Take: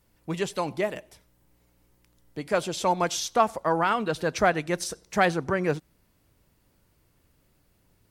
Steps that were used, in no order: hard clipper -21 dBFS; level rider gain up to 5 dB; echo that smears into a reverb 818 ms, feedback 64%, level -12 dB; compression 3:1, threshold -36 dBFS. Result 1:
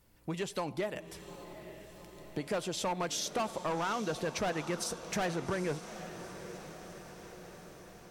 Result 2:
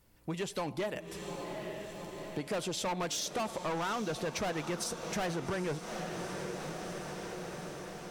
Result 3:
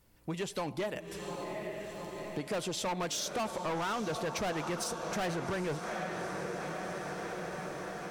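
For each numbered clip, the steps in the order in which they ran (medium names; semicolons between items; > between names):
hard clipper > level rider > compression > echo that smears into a reverb; level rider > hard clipper > echo that smears into a reverb > compression; level rider > echo that smears into a reverb > hard clipper > compression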